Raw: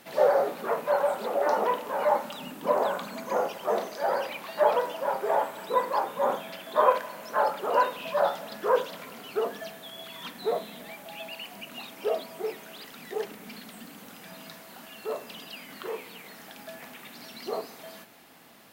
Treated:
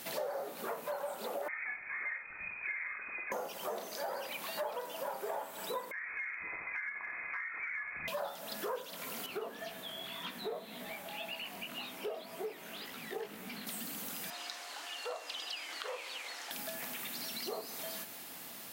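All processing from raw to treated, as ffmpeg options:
-filter_complex "[0:a]asettb=1/sr,asplit=3[a][b][c];[a]atrim=end=1.484[d];[b]atrim=start=1.48:end=3.32,asetpts=PTS-STARTPTS,afade=t=in:d=0.004:c=qsin,afade=t=out:st=1.836:d=0.004:c=qsin,equalizer=f=630:w=0.36:g=-7,lowpass=f=2.3k:t=q:w=0.5098,lowpass=f=2.3k:t=q:w=0.6013,lowpass=f=2.3k:t=q:w=0.9,lowpass=f=2.3k:t=q:w=2.563,afreqshift=-2700,asplit=2[e][f];[f]adelay=47,volume=-11.5dB[g];[e][g]amix=inputs=2:normalize=0,atrim=end_sample=81144[h];[c]atrim=start=3.316[i];[d][h]acrossfade=d=0.004:c1=hsin:c2=qsin[j];[j][i]acrossfade=d=0.004:c1=qsin:c2=hsin,asettb=1/sr,asplit=3[k][l][m];[k]atrim=end=5.914[n];[l]atrim=start=5.91:end=8.08,asetpts=PTS-STARTPTS,afade=t=in:d=0.004:c=qsin,afade=t=out:st=2.166:d=0.004:c=qsin,lowpass=f=2.3k:t=q:w=0.5098,lowpass=f=2.3k:t=q:w=0.6013,lowpass=f=2.3k:t=q:w=0.9,lowpass=f=2.3k:t=q:w=2.563,afreqshift=-2700,acompressor=threshold=-34dB:ratio=3:attack=3.2:release=140:knee=1:detection=peak[o];[m]atrim=start=8.076[p];[n][o]acrossfade=d=0.004:c1=hsin:c2=qsin[q];[q][p]acrossfade=d=0.004:c1=qsin:c2=hsin,asettb=1/sr,asplit=3[r][s][t];[r]atrim=end=9.264[u];[s]atrim=start=9.26:end=13.67,asetpts=PTS-STARTPTS,afade=t=in:d=0.004:c=qsin,afade=t=out:st=4.406:d=0.004:c=qsin,acrossover=split=3500[v][w];[w]acompressor=threshold=-58dB:ratio=4:attack=1:release=60[x];[v][x]amix=inputs=2:normalize=0,flanger=delay=15.5:depth=6.8:speed=1.9[y];[t]atrim=start=13.666[z];[u][y]acrossfade=d=0.004:c1=hsin:c2=qsin[aa];[aa][z]acrossfade=d=0.004:c1=qsin:c2=hsin,asettb=1/sr,asplit=3[ab][ac][ad];[ab]atrim=end=14.304[ae];[ac]atrim=start=14.3:end=16.51,asetpts=PTS-STARTPTS,afade=t=in:d=0.004:c=qsin,afade=t=out:st=2.206:d=0.004:c=qsin,highpass=f=260:p=1,acrossover=split=380 7700:gain=0.178 1 0.0708[af][ag][ah];[af][ag][ah]amix=inputs=3:normalize=0,afreqshift=54[ai];[ad]atrim=start=16.506[aj];[ae][ai]acrossfade=d=0.004:c1=hsin:c2=qsin[ak];[ak][aj]acrossfade=d=0.004:c1=qsin:c2=hsin,highshelf=f=3.9k:g=11.5,acompressor=threshold=-39dB:ratio=5,volume=1dB"

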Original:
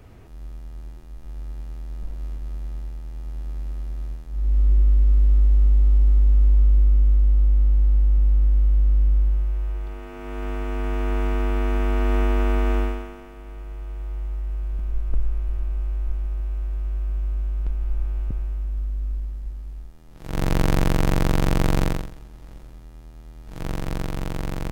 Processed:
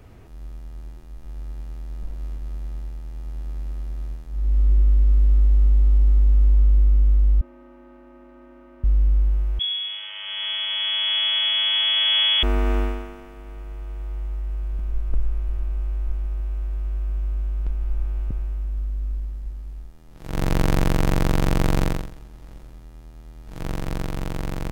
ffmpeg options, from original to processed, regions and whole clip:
-filter_complex "[0:a]asettb=1/sr,asplit=3[a][b][c];[a]atrim=end=7.414[d];[b]atrim=start=7.41:end=8.84,asetpts=PTS-STARTPTS,afade=t=in:d=0.004:c=qsin,afade=t=out:st=1.426:d=0.004:c=qsin,highpass=f=270:t=q:w=2.7,acrossover=split=510 2200:gain=0.178 1 0.112[e][f][g];[e][f][g]amix=inputs=3:normalize=0,aecho=1:1:3.3:0.7,atrim=end_sample=63063[h];[c]atrim=start=8.836[i];[d][h]acrossfade=d=0.004:c1=hsin:c2=qsin[j];[j][i]acrossfade=d=0.004:c1=qsin:c2=hsin,asettb=1/sr,asplit=3[k][l][m];[k]atrim=end=9.594[n];[l]atrim=start=9.59:end=12.43,asetpts=PTS-STARTPTS,afade=t=in:d=0.004:c=qsin,afade=t=out:st=2.836:d=0.004:c=qsin,aecho=1:1:7:0.99,atrim=end_sample=125244,lowpass=f=2.9k:t=q:w=0.5098,lowpass=f=2.9k:t=q:w=0.6013,lowpass=f=2.9k:t=q:w=0.9,lowpass=f=2.9k:t=q:w=2.563,afreqshift=-3400[o];[m]atrim=start=12.426[p];[n][o]acrossfade=d=0.004:c1=hsin:c2=qsin[q];[q][p]acrossfade=d=0.004:c1=qsin:c2=hsin"

